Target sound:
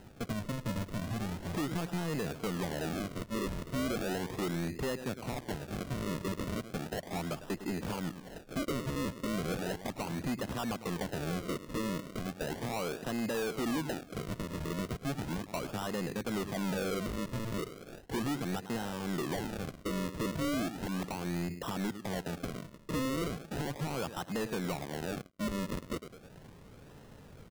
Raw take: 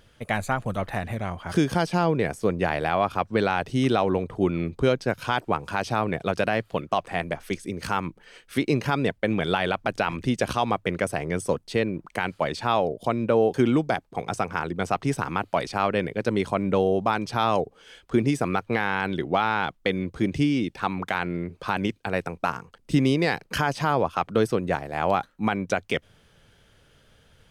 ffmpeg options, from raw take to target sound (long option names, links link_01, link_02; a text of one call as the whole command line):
ffmpeg -i in.wav -filter_complex "[0:a]aecho=1:1:104|208|312:0.1|0.035|0.0123,acompressor=threshold=-38dB:ratio=2.5,asettb=1/sr,asplit=3[link_01][link_02][link_03];[link_01]atrim=end=24.844[link_04];[link_02]atrim=start=24.84:end=25.46,asetpts=PTS-STARTPTS,afade=type=in:duration=0.004:curve=qsin,afade=type=out:start_time=0.616:duration=0.004:curve=qsin,aeval=exprs='sgn(val(0))*max(abs(val(0))-0.00398,0)':channel_layout=same[link_05];[link_03]atrim=start=25.456[link_06];[link_04][link_05]acrossfade=duration=0.004:curve1=hsin:curve2=qsin[link_07];[link_07][link_06]acrossfade=duration=0.004:curve1=qsin:curve2=hsin,equalizer=frequency=240:width=0.52:gain=10.5,acrusher=samples=38:mix=1:aa=0.000001:lfo=1:lforange=38:lforate=0.36,asoftclip=type=tanh:threshold=-30dB" out.wav